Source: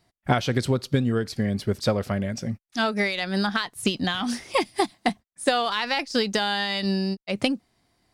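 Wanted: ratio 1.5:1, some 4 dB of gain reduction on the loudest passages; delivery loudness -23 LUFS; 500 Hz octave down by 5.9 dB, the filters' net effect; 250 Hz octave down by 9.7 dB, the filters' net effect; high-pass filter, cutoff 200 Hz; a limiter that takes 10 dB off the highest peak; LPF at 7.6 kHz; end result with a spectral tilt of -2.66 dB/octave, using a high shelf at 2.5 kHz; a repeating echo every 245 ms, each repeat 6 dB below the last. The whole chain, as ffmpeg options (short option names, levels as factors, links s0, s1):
-af "highpass=200,lowpass=7600,equalizer=f=250:t=o:g=-8.5,equalizer=f=500:t=o:g=-5,highshelf=f=2500:g=5,acompressor=threshold=0.0316:ratio=1.5,alimiter=limit=0.119:level=0:latency=1,aecho=1:1:245|490|735|980|1225|1470:0.501|0.251|0.125|0.0626|0.0313|0.0157,volume=2.37"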